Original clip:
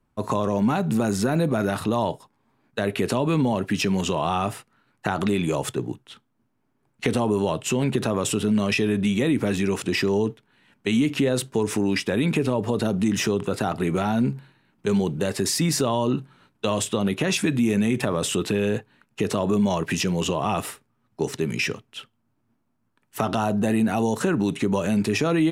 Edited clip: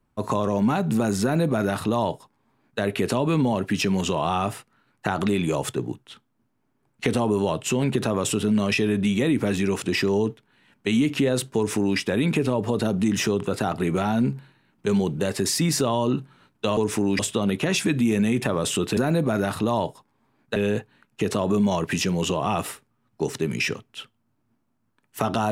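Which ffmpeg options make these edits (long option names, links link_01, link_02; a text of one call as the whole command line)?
ffmpeg -i in.wav -filter_complex "[0:a]asplit=5[link_01][link_02][link_03][link_04][link_05];[link_01]atrim=end=16.772[link_06];[link_02]atrim=start=11.558:end=11.982[link_07];[link_03]atrim=start=16.768:end=18.552[link_08];[link_04]atrim=start=1.218:end=2.812[link_09];[link_05]atrim=start=18.548[link_10];[link_06][link_07]acrossfade=duration=0.004:curve1=hsin:curve2=hsin[link_11];[link_11][link_08]acrossfade=duration=0.004:curve1=hsin:curve2=hsin[link_12];[link_12][link_09]acrossfade=duration=0.004:curve1=hsin:curve2=hsin[link_13];[link_13][link_10]acrossfade=duration=0.004:curve1=hsin:curve2=hsin" out.wav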